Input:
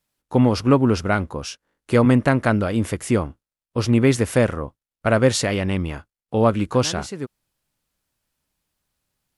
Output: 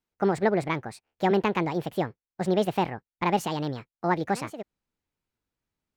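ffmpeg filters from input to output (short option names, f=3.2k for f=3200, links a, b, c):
-af "asetrate=69237,aresample=44100,lowpass=f=3k:p=1,volume=-7dB"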